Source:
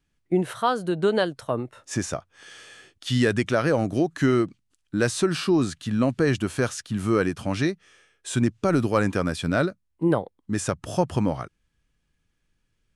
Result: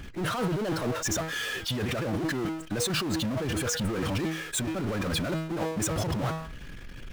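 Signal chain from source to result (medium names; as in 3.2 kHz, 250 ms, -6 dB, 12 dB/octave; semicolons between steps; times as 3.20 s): de-hum 160.4 Hz, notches 24; loudest bins only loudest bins 64; compressor with a negative ratio -33 dBFS, ratio -1; power-law waveshaper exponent 0.35; time stretch by phase-locked vocoder 0.55×; trim -8 dB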